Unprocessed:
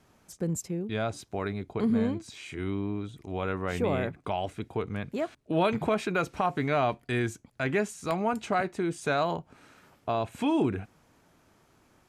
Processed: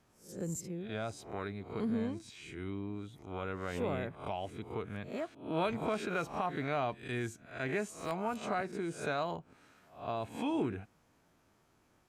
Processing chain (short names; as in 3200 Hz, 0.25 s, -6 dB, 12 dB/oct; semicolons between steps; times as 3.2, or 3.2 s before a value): spectral swells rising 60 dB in 0.42 s; gain -8.5 dB